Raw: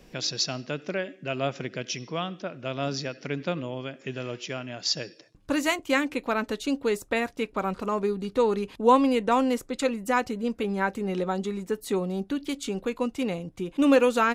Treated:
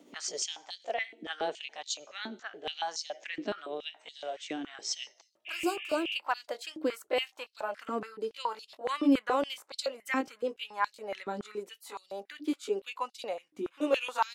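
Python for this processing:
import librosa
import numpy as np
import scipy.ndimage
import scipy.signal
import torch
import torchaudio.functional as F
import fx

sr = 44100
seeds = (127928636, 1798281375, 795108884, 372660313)

y = fx.pitch_glide(x, sr, semitones=3.5, runs='ending unshifted')
y = fx.spec_repair(y, sr, seeds[0], start_s=5.49, length_s=0.63, low_hz=1700.0, high_hz=3700.0, source='after')
y = fx.filter_held_highpass(y, sr, hz=7.1, low_hz=290.0, high_hz=4200.0)
y = y * librosa.db_to_amplitude(-7.0)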